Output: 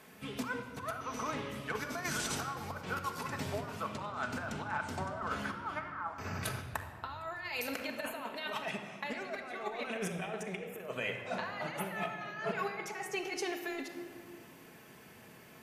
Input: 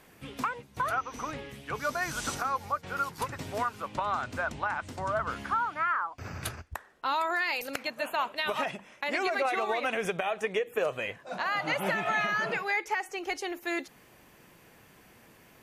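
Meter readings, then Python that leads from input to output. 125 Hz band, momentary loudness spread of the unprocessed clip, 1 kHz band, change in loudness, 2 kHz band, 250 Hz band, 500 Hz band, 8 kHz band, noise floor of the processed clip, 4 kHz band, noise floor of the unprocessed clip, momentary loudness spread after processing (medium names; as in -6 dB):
-0.5 dB, 9 LU, -8.5 dB, -7.0 dB, -7.5 dB, -1.5 dB, -6.5 dB, -1.0 dB, -55 dBFS, -5.0 dB, -58 dBFS, 8 LU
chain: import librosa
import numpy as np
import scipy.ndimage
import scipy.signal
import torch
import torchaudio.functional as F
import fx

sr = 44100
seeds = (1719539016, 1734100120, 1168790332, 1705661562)

y = scipy.signal.sosfilt(scipy.signal.butter(2, 95.0, 'highpass', fs=sr, output='sos'), x)
y = fx.over_compress(y, sr, threshold_db=-34.0, ratio=-0.5)
y = fx.room_shoebox(y, sr, seeds[0], volume_m3=3200.0, walls='mixed', distance_m=1.5)
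y = y * 10.0 ** (-4.5 / 20.0)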